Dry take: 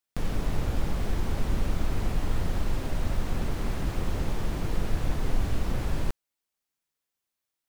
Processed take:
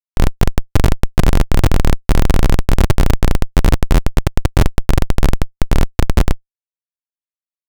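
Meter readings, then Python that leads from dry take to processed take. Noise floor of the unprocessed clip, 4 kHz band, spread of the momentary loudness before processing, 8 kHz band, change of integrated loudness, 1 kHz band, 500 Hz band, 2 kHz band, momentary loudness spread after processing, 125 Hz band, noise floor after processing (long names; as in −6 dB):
below −85 dBFS, +14.5 dB, 2 LU, +15.0 dB, +14.5 dB, +14.5 dB, +14.5 dB, +14.5 dB, 4 LU, +15.5 dB, below −85 dBFS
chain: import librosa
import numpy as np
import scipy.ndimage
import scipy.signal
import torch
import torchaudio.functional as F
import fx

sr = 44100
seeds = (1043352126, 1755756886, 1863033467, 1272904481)

y = fx.room_early_taps(x, sr, ms=(18, 45), db=(-13.5, -6.0))
y = fx.room_shoebox(y, sr, seeds[0], volume_m3=670.0, walls='furnished', distance_m=9.7)
y = fx.schmitt(y, sr, flips_db=-12.0)
y = y * librosa.db_to_amplitude(-7.5)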